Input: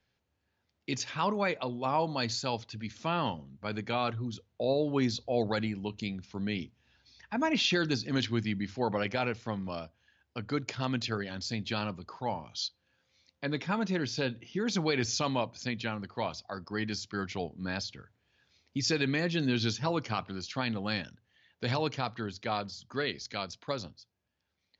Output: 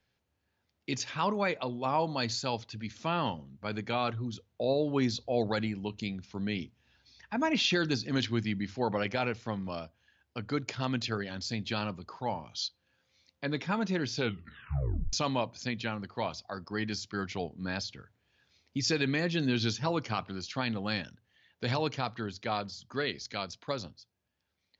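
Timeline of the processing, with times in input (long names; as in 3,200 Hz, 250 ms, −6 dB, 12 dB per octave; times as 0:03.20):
0:14.16: tape stop 0.97 s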